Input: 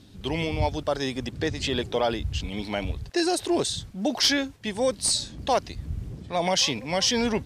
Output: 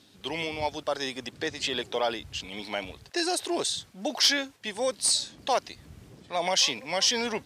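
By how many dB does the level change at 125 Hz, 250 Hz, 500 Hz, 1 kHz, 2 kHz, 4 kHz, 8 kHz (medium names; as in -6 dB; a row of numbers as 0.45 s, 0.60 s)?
-14.5 dB, -8.0 dB, -4.0 dB, -2.0 dB, -0.5 dB, 0.0 dB, 0.0 dB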